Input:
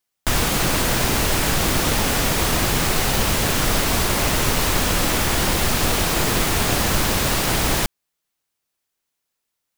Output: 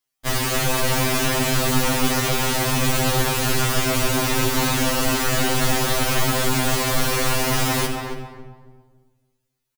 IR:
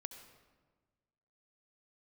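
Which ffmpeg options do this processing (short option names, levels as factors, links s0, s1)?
-filter_complex "[0:a]asplit=2[s0][s1];[s1]adelay=275,lowpass=f=1300:p=1,volume=0.631,asplit=2[s2][s3];[s3]adelay=275,lowpass=f=1300:p=1,volume=0.28,asplit=2[s4][s5];[s5]adelay=275,lowpass=f=1300:p=1,volume=0.28,asplit=2[s6][s7];[s7]adelay=275,lowpass=f=1300:p=1,volume=0.28[s8];[s0][s2][s4][s6][s8]amix=inputs=5:normalize=0[s9];[1:a]atrim=start_sample=2205[s10];[s9][s10]afir=irnorm=-1:irlink=0,afftfilt=real='re*2.45*eq(mod(b,6),0)':imag='im*2.45*eq(mod(b,6),0)':win_size=2048:overlap=0.75,volume=1.68"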